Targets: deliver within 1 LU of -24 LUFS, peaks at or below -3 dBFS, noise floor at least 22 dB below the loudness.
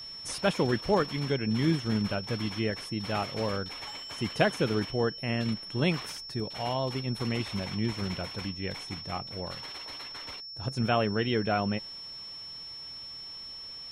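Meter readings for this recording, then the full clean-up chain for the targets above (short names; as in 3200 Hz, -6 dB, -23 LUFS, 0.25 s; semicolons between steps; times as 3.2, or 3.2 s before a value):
steady tone 5400 Hz; tone level -40 dBFS; loudness -31.5 LUFS; peak -11.0 dBFS; loudness target -24.0 LUFS
-> notch 5400 Hz, Q 30; gain +7.5 dB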